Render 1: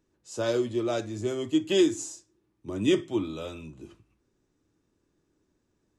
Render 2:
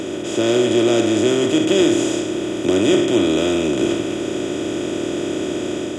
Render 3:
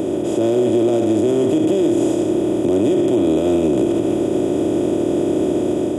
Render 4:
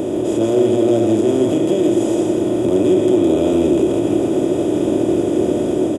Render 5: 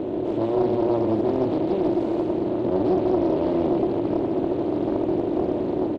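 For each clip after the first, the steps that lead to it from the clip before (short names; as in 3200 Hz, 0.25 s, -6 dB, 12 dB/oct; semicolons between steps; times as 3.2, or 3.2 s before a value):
per-bin compression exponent 0.2; AGC gain up to 3 dB
band shelf 3000 Hz -13 dB 2.9 oct; limiter -14.5 dBFS, peak gain reduction 9.5 dB; gain +5.5 dB
doubler 27 ms -11 dB; echo 0.162 s -5 dB
air absorption 300 m; Doppler distortion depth 0.57 ms; gain -6 dB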